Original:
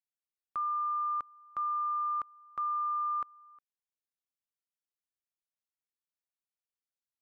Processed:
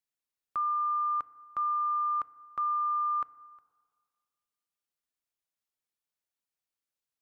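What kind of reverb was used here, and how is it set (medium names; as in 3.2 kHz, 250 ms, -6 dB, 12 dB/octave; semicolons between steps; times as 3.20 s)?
FDN reverb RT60 1.9 s, low-frequency decay 0.9×, high-frequency decay 0.25×, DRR 16.5 dB; trim +2.5 dB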